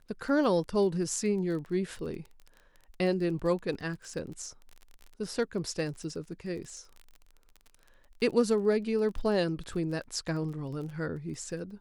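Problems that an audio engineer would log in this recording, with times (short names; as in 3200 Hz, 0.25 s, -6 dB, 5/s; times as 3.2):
crackle 24/s -39 dBFS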